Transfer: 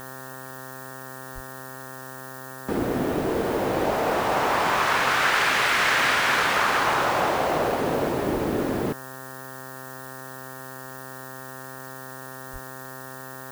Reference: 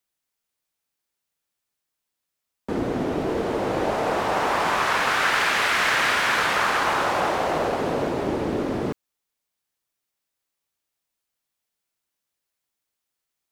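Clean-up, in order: de-hum 131.5 Hz, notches 14; 1.34–1.46 HPF 140 Hz 24 dB/oct; 8.33–8.45 HPF 140 Hz 24 dB/oct; 12.52–12.64 HPF 140 Hz 24 dB/oct; noise print and reduce 30 dB

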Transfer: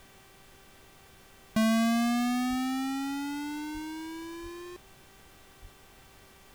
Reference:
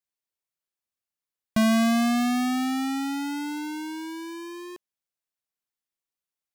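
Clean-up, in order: de-hum 388.2 Hz, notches 9; de-plosive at 2.49/3.73/4.42/5.61; noise print and reduce 30 dB; gain correction +4.5 dB, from 1.15

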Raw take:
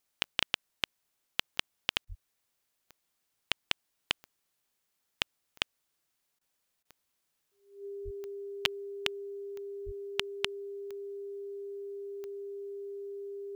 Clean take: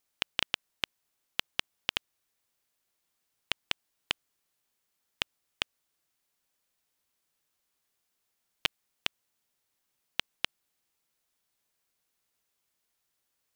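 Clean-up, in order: de-click; notch 400 Hz, Q 30; 2.08–2.2 HPF 140 Hz 24 dB/oct; 8.04–8.16 HPF 140 Hz 24 dB/oct; 9.85–9.97 HPF 140 Hz 24 dB/oct; interpolate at 2.05/6.39/6.83, 20 ms

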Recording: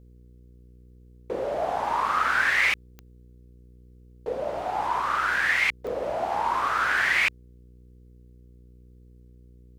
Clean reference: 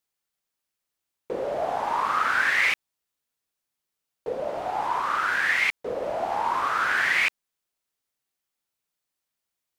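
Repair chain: de-click; de-hum 61 Hz, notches 8

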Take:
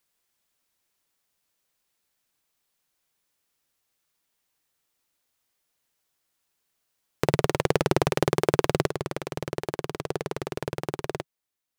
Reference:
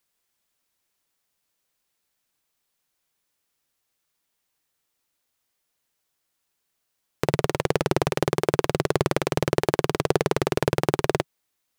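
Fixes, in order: gain 0 dB, from 8.9 s +9 dB

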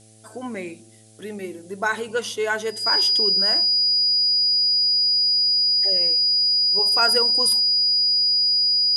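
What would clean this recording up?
de-hum 109.5 Hz, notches 7; notch 4900 Hz, Q 30; expander -33 dBFS, range -21 dB

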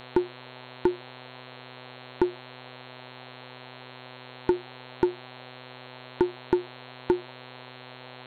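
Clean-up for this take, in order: de-hum 126.3 Hz, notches 34; noise print and reduce 30 dB

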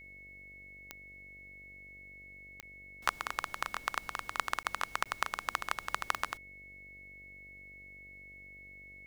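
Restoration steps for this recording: de-click; de-hum 48.2 Hz, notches 14; notch 2200 Hz, Q 30; interpolate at 2.61/4.63/5.04, 17 ms

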